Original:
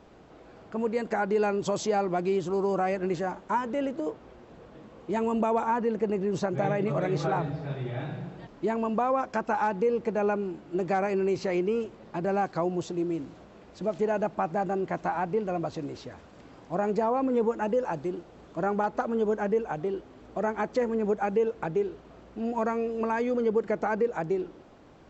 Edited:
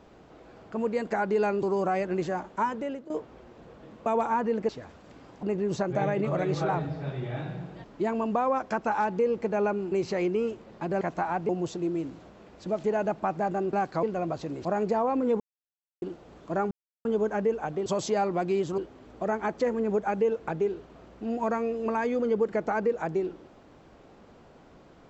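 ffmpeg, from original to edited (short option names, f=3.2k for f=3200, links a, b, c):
-filter_complex "[0:a]asplit=18[a][b][c][d][e][f][g][h][i][j][k][l][m][n][o][p][q][r];[a]atrim=end=1.632[s];[b]atrim=start=2.548:end=4.02,asetpts=PTS-STARTPTS,afade=t=out:st=1.062:d=0.41:silence=0.177828[t];[c]atrim=start=4.02:end=4.982,asetpts=PTS-STARTPTS,afade=t=in:d=0.004:c=hsin:silence=0.177828[u];[d]atrim=start=5.428:end=6.062[v];[e]atrim=start=15.978:end=16.722[w];[f]atrim=start=6.058:end=10.552[x];[g]atrim=start=11.248:end=12.342[y];[h]atrim=start=14.878:end=15.362[z];[i]atrim=start=12.638:end=14.882[aa];[j]atrim=start=12.338:end=12.642[ab];[k]atrim=start=15.358:end=15.982[ac];[l]atrim=start=16.718:end=17.47,asetpts=PTS-STARTPTS,afade=t=out:st=0.748:d=0.004:c=hsin[ad];[m]atrim=start=17.47:end=18.09,asetpts=PTS-STARTPTS,volume=0[ae];[n]atrim=start=18.09:end=18.78,asetpts=PTS-STARTPTS,afade=t=in:d=0.004:c=hsin,afade=t=out:st=0.686:d=0.004:c=hsin[af];[o]atrim=start=18.78:end=19.12,asetpts=PTS-STARTPTS,volume=0[ag];[p]atrim=start=19.12:end=19.932,asetpts=PTS-STARTPTS,afade=t=in:d=0.004:c=hsin[ah];[q]atrim=start=1.628:end=2.552[ai];[r]atrim=start=19.928[aj];[t][u]concat=n=2:v=0:a=1[ak];[s][ak]acrossfade=d=0.004:c1=hsin:c2=hsin[al];[al][v]acrossfade=d=0.004:c1=hsin:c2=hsin[am];[am][w]acrossfade=d=0.004:c1=hsin:c2=hsin[an];[an][x]acrossfade=d=0.004:c1=hsin:c2=hsin[ao];[ao][y]acrossfade=d=0.004:c1=hsin:c2=hsin[ap];[ap][z]acrossfade=d=0.004:c1=hsin:c2=hsin[aq];[aq][aa]acrossfade=d=0.004:c1=hsin:c2=hsin[ar];[ar][ab]acrossfade=d=0.004:c1=hsin:c2=hsin[as];[as][ac]acrossfade=d=0.004:c1=hsin:c2=hsin[at];[ad][ae][af][ag][ah]concat=n=5:v=0:a=1[au];[at][au]acrossfade=d=0.004:c1=hsin:c2=hsin[av];[av][ai]acrossfade=d=0.004:c1=hsin:c2=hsin[aw];[aw][aj]acrossfade=d=0.004:c1=hsin:c2=hsin"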